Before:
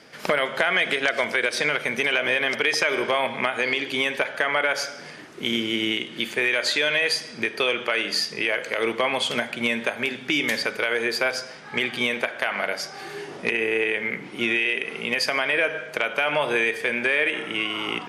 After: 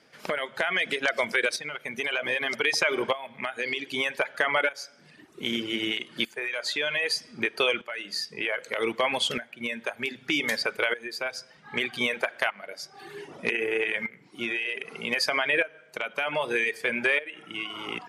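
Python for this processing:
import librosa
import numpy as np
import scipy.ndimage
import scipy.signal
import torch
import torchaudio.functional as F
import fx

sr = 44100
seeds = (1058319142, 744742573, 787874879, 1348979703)

y = fx.tremolo_shape(x, sr, shape='saw_up', hz=0.64, depth_pct=70)
y = fx.dereverb_blind(y, sr, rt60_s=1.3)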